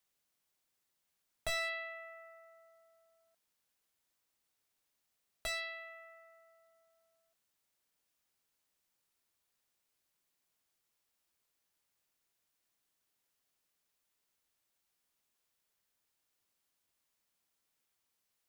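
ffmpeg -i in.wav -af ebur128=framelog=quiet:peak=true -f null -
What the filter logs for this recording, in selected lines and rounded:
Integrated loudness:
  I:         -40.0 LUFS
  Threshold: -52.5 LUFS
Loudness range:
  LRA:        15.6 LU
  Threshold: -66.8 LUFS
  LRA low:   -59.5 LUFS
  LRA high:  -43.9 LUFS
True peak:
  Peak:      -24.7 dBFS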